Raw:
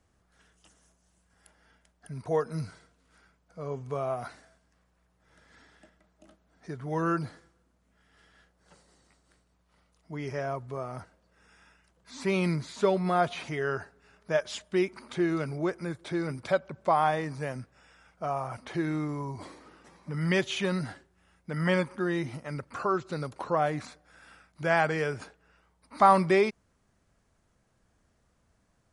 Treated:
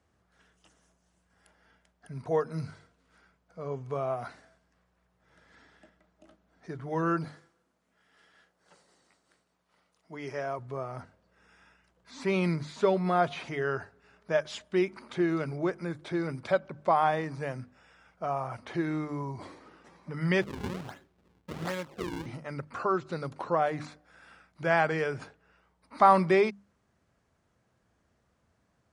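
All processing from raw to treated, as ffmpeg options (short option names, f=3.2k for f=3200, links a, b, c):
-filter_complex "[0:a]asettb=1/sr,asplit=3[a][b][c];[a]atrim=end=7.244[d];[b]atrim=start=7.24:end=10.59,asetpts=PTS-STARTPTS,afade=t=in:d=0.004:c=qsin,afade=t=out:st=3.346:d=0.004:c=qsin,highpass=f=280:p=1,highshelf=f=7k:g=5.5[e];[c]atrim=start=10.586[f];[d][e]acrossfade=d=0.004:c1=hsin:c2=qsin[g];[g][f]acrossfade=d=0.004:c1=qsin:c2=hsin,asettb=1/sr,asplit=3[h][i][j];[h]atrim=end=20.424[k];[i]atrim=start=20.42:end=22.26,asetpts=PTS-STARTPTS,afade=t=in:d=0.004:c=qsin,afade=t=out:st=1.836:d=0.004:c=qsin,acrossover=split=480|3000[l][m][n];[l]acompressor=threshold=-39dB:ratio=4[o];[m]acompressor=threshold=-34dB:ratio=4[p];[n]acompressor=threshold=-46dB:ratio=4[q];[o][p][q]amix=inputs=3:normalize=0,acrusher=samples=40:mix=1:aa=0.000001:lfo=1:lforange=64:lforate=1.3[r];[j]atrim=start=22.256[s];[k][r]acrossfade=d=0.004:c1=hsin:c2=qsin[t];[t][s]acrossfade=d=0.004:c1=qsin:c2=hsin,highpass=65,highshelf=f=7.7k:g=-11.5,bandreject=f=50:t=h:w=6,bandreject=f=100:t=h:w=6,bandreject=f=150:t=h:w=6,bandreject=f=200:t=h:w=6,bandreject=f=250:t=h:w=6,bandreject=f=300:t=h:w=6"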